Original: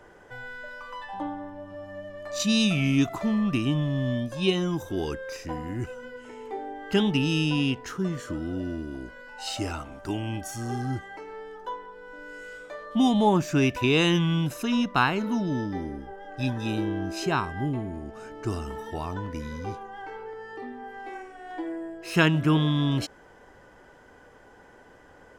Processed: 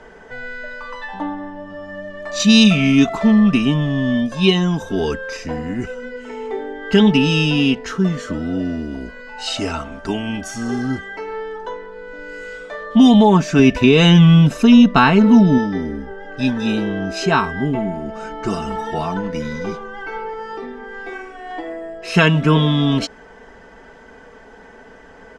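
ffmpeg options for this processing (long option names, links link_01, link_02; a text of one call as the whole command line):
ffmpeg -i in.wav -filter_complex "[0:a]asettb=1/sr,asplit=3[link_01][link_02][link_03];[link_01]atrim=end=13.594[link_04];[link_02]atrim=start=13.59:end=15.58,asetpts=PTS-STARTPTS,afade=type=in:duration=0.004:curve=qsin,afade=type=out:start_time=1.986:duration=0.004:curve=qsin,lowshelf=frequency=330:gain=7.5[link_05];[link_03]atrim=start=15.576[link_06];[link_04][link_05]acrossfade=duration=0.004:curve1=hsin:curve2=qsin[link_07];[link_07][link_06]acrossfade=duration=0.004:curve1=qsin:curve2=hsin,asettb=1/sr,asplit=3[link_08][link_09][link_10];[link_08]atrim=end=17.744[link_11];[link_09]atrim=start=17.74:end=21.13,asetpts=PTS-STARTPTS,afade=type=in:duration=0.004:curve=qsin,afade=type=out:start_time=3.386:duration=0.004:curve=qsin,aecho=1:1:5.9:0.65,atrim=end_sample=149499[link_12];[link_10]atrim=start=21.126[link_13];[link_11][link_12]acrossfade=duration=0.004:curve1=hsin:curve2=qsin[link_14];[link_14][link_13]acrossfade=duration=0.004:curve1=qsin:curve2=hsin,lowpass=6500,aecho=1:1:4.5:0.66,alimiter=level_in=9.5dB:limit=-1dB:release=50:level=0:latency=1,volume=-1dB" out.wav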